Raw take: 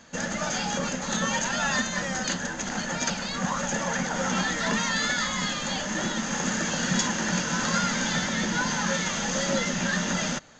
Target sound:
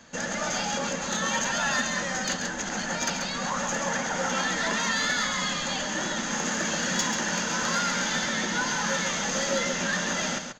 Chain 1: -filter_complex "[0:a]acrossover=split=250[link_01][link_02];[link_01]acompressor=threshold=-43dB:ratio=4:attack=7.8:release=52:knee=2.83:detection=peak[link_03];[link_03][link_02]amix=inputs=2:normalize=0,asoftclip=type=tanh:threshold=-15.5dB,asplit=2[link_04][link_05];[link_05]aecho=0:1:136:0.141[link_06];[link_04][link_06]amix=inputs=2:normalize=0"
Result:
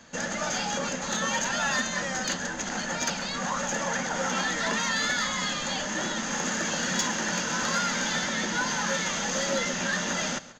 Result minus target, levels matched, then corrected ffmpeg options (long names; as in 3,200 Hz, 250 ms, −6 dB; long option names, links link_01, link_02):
echo-to-direct −10.5 dB
-filter_complex "[0:a]acrossover=split=250[link_01][link_02];[link_01]acompressor=threshold=-43dB:ratio=4:attack=7.8:release=52:knee=2.83:detection=peak[link_03];[link_03][link_02]amix=inputs=2:normalize=0,asoftclip=type=tanh:threshold=-15.5dB,asplit=2[link_04][link_05];[link_05]aecho=0:1:136:0.473[link_06];[link_04][link_06]amix=inputs=2:normalize=0"